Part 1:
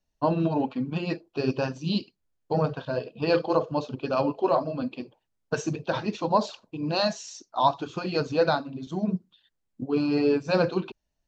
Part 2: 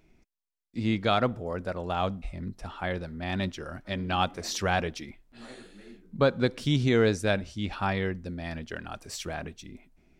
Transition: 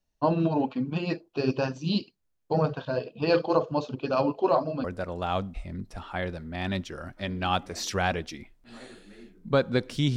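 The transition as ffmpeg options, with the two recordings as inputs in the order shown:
ffmpeg -i cue0.wav -i cue1.wav -filter_complex "[0:a]apad=whole_dur=10.16,atrim=end=10.16,atrim=end=4.842[link_01];[1:a]atrim=start=1.518:end=6.84[link_02];[link_01][link_02]acrossfade=duration=0.004:curve1=hsin:curve2=hsin" out.wav

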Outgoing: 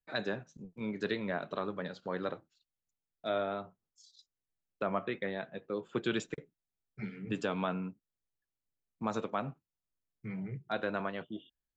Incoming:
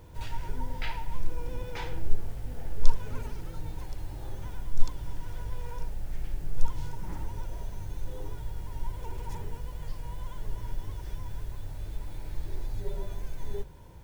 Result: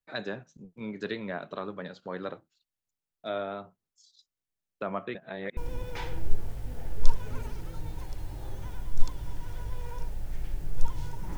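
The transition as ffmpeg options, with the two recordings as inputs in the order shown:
ffmpeg -i cue0.wav -i cue1.wav -filter_complex "[0:a]apad=whole_dur=11.37,atrim=end=11.37,asplit=2[link_01][link_02];[link_01]atrim=end=5.152[link_03];[link_02]atrim=start=5.148:end=5.572,asetpts=PTS-STARTPTS,areverse[link_04];[1:a]atrim=start=1.368:end=7.17[link_05];[link_03][link_04]acrossfade=duration=0.004:curve1=hsin:curve2=hsin[link_06];[link_06][link_05]acrossfade=duration=0.004:curve1=hsin:curve2=hsin" out.wav

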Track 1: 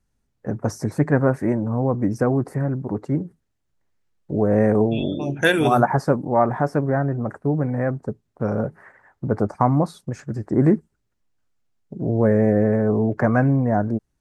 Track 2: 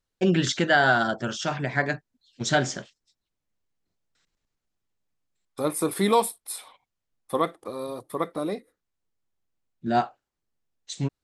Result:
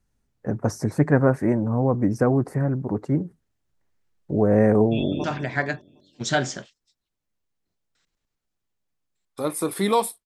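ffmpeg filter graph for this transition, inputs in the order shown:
ffmpeg -i cue0.wav -i cue1.wav -filter_complex "[0:a]apad=whole_dur=10.25,atrim=end=10.25,atrim=end=5.242[link_01];[1:a]atrim=start=1.438:end=6.45[link_02];[link_01][link_02]acrossfade=duration=0.004:curve1=hsin:curve2=hsin,asplit=2[link_03][link_04];[link_04]afade=type=in:start_time=4.92:duration=0.01,afade=type=out:start_time=5.24:duration=0.01,aecho=0:1:190|380|570|760|950:0.237137|0.118569|0.0592843|0.0296422|0.0148211[link_05];[link_03][link_05]amix=inputs=2:normalize=0" out.wav

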